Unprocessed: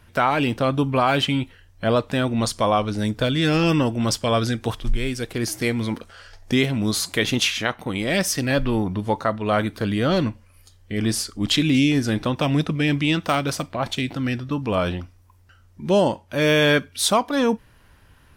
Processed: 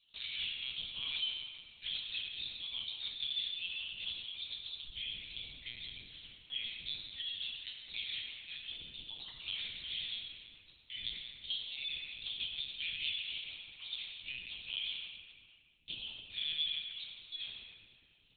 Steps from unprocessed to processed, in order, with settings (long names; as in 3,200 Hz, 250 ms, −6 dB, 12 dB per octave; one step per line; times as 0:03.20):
time-frequency cells dropped at random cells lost 28%
inverse Chebyshev high-pass filter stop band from 1,500 Hz, stop band 50 dB
reverb reduction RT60 0.52 s
0:04.74–0:05.91: spectral tilt −2.5 dB per octave
downward compressor 10 to 1, threshold −45 dBFS, peak gain reduction 23.5 dB
leveller curve on the samples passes 1
convolution reverb RT60 2.3 s, pre-delay 6 ms, DRR −4 dB
linear-prediction vocoder at 8 kHz pitch kept
level +5 dB